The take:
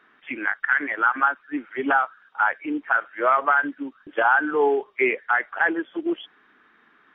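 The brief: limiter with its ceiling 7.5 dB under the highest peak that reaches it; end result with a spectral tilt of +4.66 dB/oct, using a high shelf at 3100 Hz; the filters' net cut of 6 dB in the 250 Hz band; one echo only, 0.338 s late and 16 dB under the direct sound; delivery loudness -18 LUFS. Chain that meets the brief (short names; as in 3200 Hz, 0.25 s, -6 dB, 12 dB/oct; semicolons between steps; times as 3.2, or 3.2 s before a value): bell 250 Hz -8.5 dB; high shelf 3100 Hz -9 dB; limiter -15 dBFS; echo 0.338 s -16 dB; gain +9.5 dB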